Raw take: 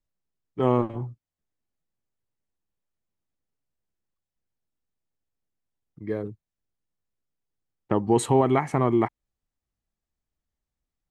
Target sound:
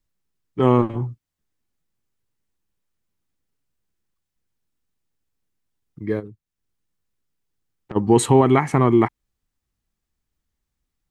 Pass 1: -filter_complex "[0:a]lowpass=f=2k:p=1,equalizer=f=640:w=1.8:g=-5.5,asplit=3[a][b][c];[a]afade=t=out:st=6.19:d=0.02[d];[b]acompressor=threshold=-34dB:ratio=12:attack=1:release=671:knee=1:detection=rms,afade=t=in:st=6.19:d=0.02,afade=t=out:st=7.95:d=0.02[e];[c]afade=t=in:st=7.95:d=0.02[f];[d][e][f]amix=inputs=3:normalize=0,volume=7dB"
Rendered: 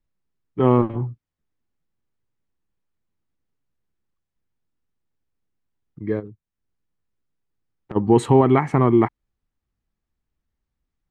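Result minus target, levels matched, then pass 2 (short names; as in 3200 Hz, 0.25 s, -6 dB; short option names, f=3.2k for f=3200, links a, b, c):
2000 Hz band -2.5 dB
-filter_complex "[0:a]equalizer=f=640:w=1.8:g=-5.5,asplit=3[a][b][c];[a]afade=t=out:st=6.19:d=0.02[d];[b]acompressor=threshold=-34dB:ratio=12:attack=1:release=671:knee=1:detection=rms,afade=t=in:st=6.19:d=0.02,afade=t=out:st=7.95:d=0.02[e];[c]afade=t=in:st=7.95:d=0.02[f];[d][e][f]amix=inputs=3:normalize=0,volume=7dB"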